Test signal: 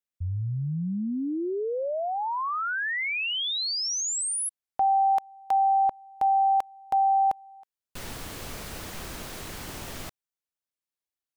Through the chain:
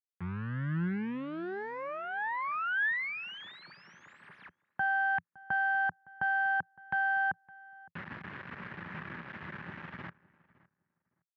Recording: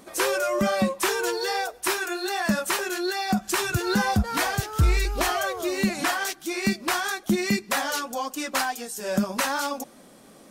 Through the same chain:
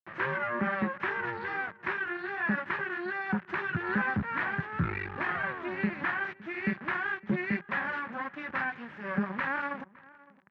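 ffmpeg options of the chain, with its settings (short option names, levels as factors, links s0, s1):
-filter_complex "[0:a]adynamicequalizer=threshold=0.00708:dfrequency=170:dqfactor=3.9:tfrequency=170:tqfactor=3.9:attack=5:release=100:ratio=0.375:range=2.5:mode=cutabove:tftype=bell,asplit=2[s0][s1];[s1]acompressor=threshold=0.02:ratio=5:attack=0.12:release=221:detection=peak,volume=0.944[s2];[s0][s2]amix=inputs=2:normalize=0,aeval=exprs='max(val(0),0)':c=same,acrusher=bits=5:mix=0:aa=0.000001,highpass=f=100:w=0.5412,highpass=f=100:w=1.3066,equalizer=f=110:t=q:w=4:g=-3,equalizer=f=170:t=q:w=4:g=6,equalizer=f=290:t=q:w=4:g=-5,equalizer=f=470:t=q:w=4:g=-9,equalizer=f=690:t=q:w=4:g=-9,equalizer=f=1700:t=q:w=4:g=7,lowpass=f=2200:w=0.5412,lowpass=f=2200:w=1.3066,asplit=2[s3][s4];[s4]adelay=562,lowpass=f=1700:p=1,volume=0.0891,asplit=2[s5][s6];[s6]adelay=562,lowpass=f=1700:p=1,volume=0.18[s7];[s5][s7]amix=inputs=2:normalize=0[s8];[s3][s8]amix=inputs=2:normalize=0,volume=0.75"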